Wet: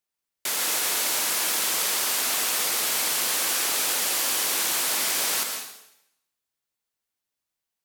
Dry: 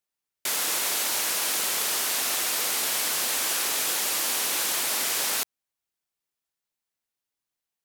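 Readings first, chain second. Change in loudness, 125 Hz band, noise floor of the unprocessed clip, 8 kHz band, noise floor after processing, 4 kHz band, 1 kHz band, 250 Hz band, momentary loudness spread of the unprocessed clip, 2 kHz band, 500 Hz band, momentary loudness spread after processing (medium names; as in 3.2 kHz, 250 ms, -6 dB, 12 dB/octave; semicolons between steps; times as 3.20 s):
+1.5 dB, no reading, under -85 dBFS, +1.5 dB, under -85 dBFS, +1.5 dB, +1.5 dB, +1.5 dB, 2 LU, +1.5 dB, +1.5 dB, 3 LU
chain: plate-style reverb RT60 0.8 s, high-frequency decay 1×, pre-delay 105 ms, DRR 4 dB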